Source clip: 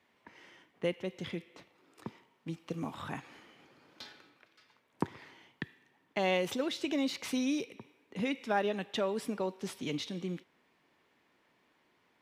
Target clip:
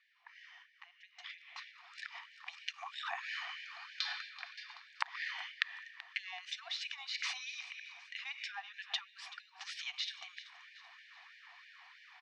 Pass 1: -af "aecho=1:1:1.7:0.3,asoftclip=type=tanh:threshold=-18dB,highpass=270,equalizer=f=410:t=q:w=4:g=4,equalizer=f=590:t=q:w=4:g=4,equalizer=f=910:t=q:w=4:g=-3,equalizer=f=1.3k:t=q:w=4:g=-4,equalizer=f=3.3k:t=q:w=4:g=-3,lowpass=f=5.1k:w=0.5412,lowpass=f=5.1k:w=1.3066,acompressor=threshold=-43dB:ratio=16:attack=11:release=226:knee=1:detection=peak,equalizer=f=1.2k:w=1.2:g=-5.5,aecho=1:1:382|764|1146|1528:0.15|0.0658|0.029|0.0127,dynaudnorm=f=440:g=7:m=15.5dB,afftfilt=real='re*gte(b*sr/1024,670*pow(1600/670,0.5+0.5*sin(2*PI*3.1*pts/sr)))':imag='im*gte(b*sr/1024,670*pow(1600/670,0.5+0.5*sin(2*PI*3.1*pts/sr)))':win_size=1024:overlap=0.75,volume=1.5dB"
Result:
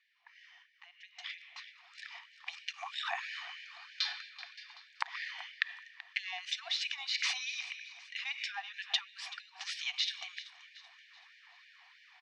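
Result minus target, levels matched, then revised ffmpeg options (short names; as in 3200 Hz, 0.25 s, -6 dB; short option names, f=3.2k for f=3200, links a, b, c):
compressor: peak gain reduction -6.5 dB; 1000 Hz band -2.5 dB
-af "aecho=1:1:1.7:0.3,asoftclip=type=tanh:threshold=-18dB,highpass=270,equalizer=f=410:t=q:w=4:g=4,equalizer=f=590:t=q:w=4:g=4,equalizer=f=910:t=q:w=4:g=-3,equalizer=f=1.3k:t=q:w=4:g=-4,equalizer=f=3.3k:t=q:w=4:g=-3,lowpass=f=5.1k:w=0.5412,lowpass=f=5.1k:w=1.3066,acompressor=threshold=-50dB:ratio=16:attack=11:release=226:knee=1:detection=peak,aecho=1:1:382|764|1146|1528:0.15|0.0658|0.029|0.0127,dynaudnorm=f=440:g=7:m=15.5dB,afftfilt=real='re*gte(b*sr/1024,670*pow(1600/670,0.5+0.5*sin(2*PI*3.1*pts/sr)))':imag='im*gte(b*sr/1024,670*pow(1600/670,0.5+0.5*sin(2*PI*3.1*pts/sr)))':win_size=1024:overlap=0.75,volume=1.5dB"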